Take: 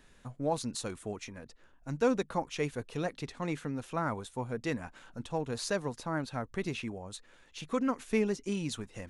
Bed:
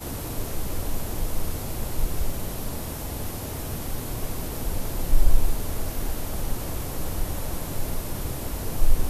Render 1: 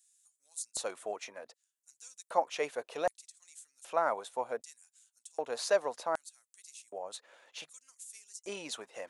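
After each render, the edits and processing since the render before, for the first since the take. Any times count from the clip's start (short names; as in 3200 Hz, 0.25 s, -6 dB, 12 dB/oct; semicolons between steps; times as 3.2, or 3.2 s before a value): LFO high-pass square 0.65 Hz 610–7900 Hz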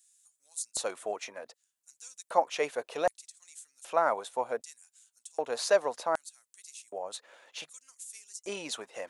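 gain +3.5 dB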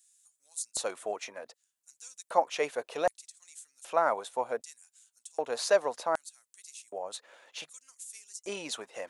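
nothing audible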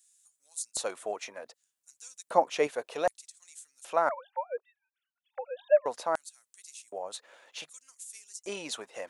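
2.26–2.67 bell 210 Hz +9.5 dB 1.8 oct; 4.09–5.86 sine-wave speech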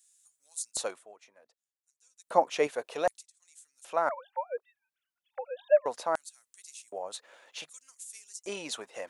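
0.85–2.35 dip -17.5 dB, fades 0.19 s; 3.23–4.25 fade in, from -13 dB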